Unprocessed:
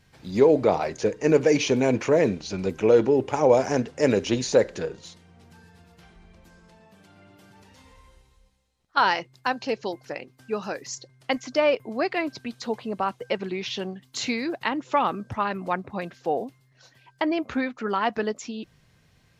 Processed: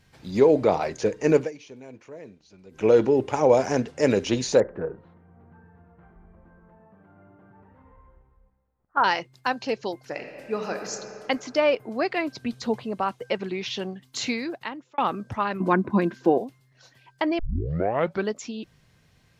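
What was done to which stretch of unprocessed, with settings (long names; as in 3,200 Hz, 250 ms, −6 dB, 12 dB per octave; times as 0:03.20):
0:01.36–0:02.86: duck −22 dB, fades 0.15 s
0:04.60–0:09.04: low-pass filter 1,500 Hz 24 dB per octave
0:10.07–0:10.92: thrown reverb, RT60 2.9 s, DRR 4 dB
0:12.42–0:12.84: low-shelf EQ 240 Hz +9.5 dB
0:14.29–0:14.98: fade out
0:15.60–0:16.38: hollow resonant body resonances 220/330/1,000/1,500 Hz, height 16 dB, ringing for 55 ms
0:17.39: tape start 0.90 s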